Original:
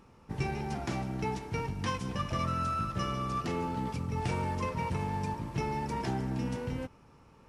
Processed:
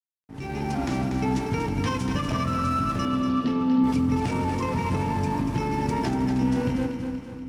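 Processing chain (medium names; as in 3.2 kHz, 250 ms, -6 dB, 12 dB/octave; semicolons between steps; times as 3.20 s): peaking EQ 270 Hz +13.5 dB 0.25 oct; peak limiter -29 dBFS, peak gain reduction 10 dB; level rider gain up to 16.5 dB; crossover distortion -43.5 dBFS; 3.05–3.84 s: cabinet simulation 200–4400 Hz, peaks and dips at 240 Hz +10 dB, 360 Hz -5 dB, 780 Hz -7 dB, 1.4 kHz -8 dB, 2.2 kHz -8 dB; two-band feedback delay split 320 Hz, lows 325 ms, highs 239 ms, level -7 dB; trim -5.5 dB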